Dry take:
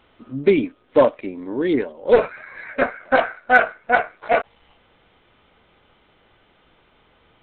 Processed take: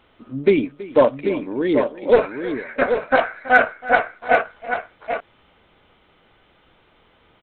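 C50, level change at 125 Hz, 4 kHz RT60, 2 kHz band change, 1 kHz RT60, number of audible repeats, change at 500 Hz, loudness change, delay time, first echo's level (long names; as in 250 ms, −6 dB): no reverb audible, +1.0 dB, no reverb audible, +1.0 dB, no reverb audible, 2, +1.0 dB, 0.0 dB, 326 ms, −18.5 dB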